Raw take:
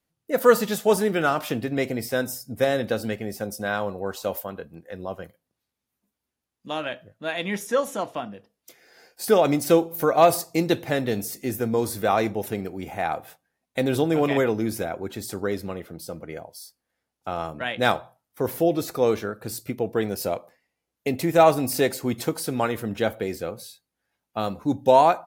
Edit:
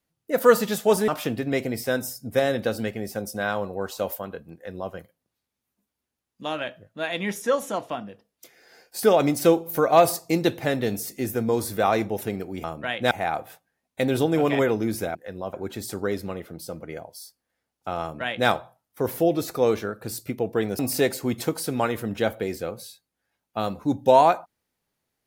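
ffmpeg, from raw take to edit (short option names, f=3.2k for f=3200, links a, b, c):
-filter_complex "[0:a]asplit=7[a][b][c][d][e][f][g];[a]atrim=end=1.082[h];[b]atrim=start=1.328:end=12.892[i];[c]atrim=start=17.408:end=17.882[j];[d]atrim=start=12.888:end=14.932[k];[e]atrim=start=4.788:end=5.172[l];[f]atrim=start=14.928:end=20.192[m];[g]atrim=start=21.588[n];[h][i]acrossfade=d=0.004:c1=hsin:c2=hsin[o];[o][j]acrossfade=d=0.004:c1=hsin:c2=hsin[p];[p][k]acrossfade=d=0.004:c1=hsin:c2=hsin[q];[q][l]acrossfade=d=0.004:c1=hsin:c2=hsin[r];[r][m]acrossfade=d=0.004:c1=hsin:c2=hsin[s];[s][n]acrossfade=d=0.004:c1=hsin:c2=hsin"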